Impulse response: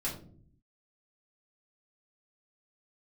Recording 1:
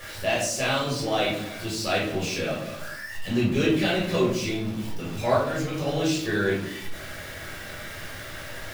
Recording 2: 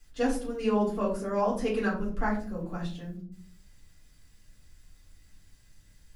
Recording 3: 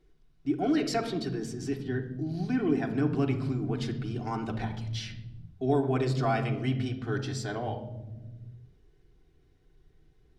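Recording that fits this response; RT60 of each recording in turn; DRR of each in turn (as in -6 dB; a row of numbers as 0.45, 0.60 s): 2; 0.70, 0.55, 1.1 s; -7.0, -6.5, 0.5 dB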